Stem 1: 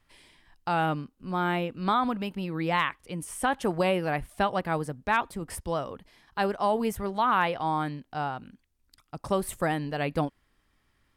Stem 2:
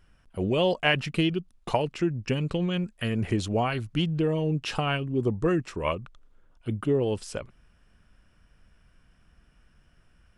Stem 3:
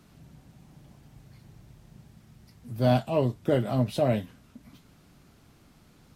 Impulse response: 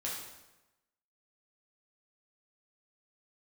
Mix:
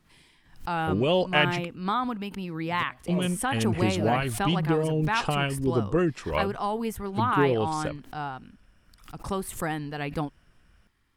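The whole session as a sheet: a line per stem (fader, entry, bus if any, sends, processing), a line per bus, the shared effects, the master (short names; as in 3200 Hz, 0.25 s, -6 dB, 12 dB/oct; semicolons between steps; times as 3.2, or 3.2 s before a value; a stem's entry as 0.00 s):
-1.5 dB, 0.00 s, no send, bell 590 Hz -8.5 dB 0.31 oct; backwards sustainer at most 150 dB/s
+0.5 dB, 0.50 s, muted 1.65–3.08, no send, dry
-10.5 dB, 0.00 s, no send, step gate "x.x...xx.x.x" 69 bpm -24 dB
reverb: off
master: dry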